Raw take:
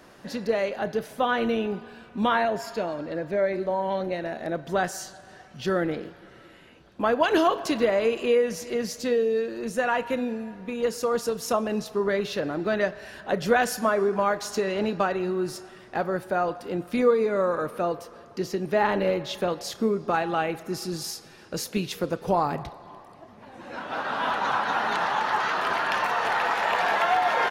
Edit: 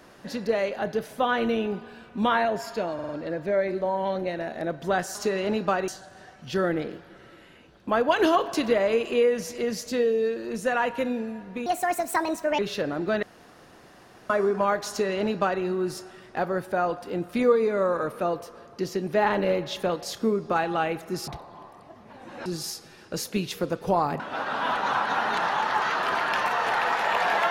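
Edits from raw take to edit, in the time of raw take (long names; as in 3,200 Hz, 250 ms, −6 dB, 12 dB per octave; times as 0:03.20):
0:02.94: stutter 0.05 s, 4 plays
0:10.78–0:12.17: play speed 150%
0:12.81–0:13.88: fill with room tone
0:14.47–0:15.20: duplicate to 0:05.00
0:22.60–0:23.78: move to 0:20.86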